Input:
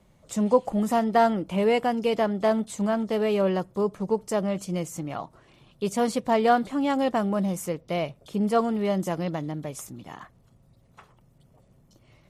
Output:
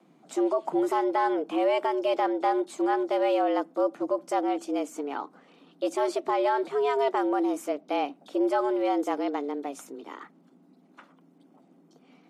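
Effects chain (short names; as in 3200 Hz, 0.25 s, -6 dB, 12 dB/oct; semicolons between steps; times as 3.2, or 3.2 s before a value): high shelf 6200 Hz -11.5 dB; limiter -17 dBFS, peak gain reduction 9 dB; frequency shift +140 Hz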